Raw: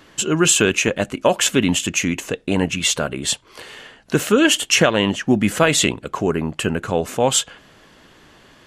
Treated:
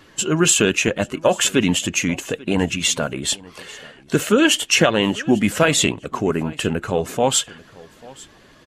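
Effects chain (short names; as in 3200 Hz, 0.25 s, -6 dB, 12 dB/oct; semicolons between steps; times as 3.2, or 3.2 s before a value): bin magnitudes rounded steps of 15 dB; on a send: echo 0.841 s -22.5 dB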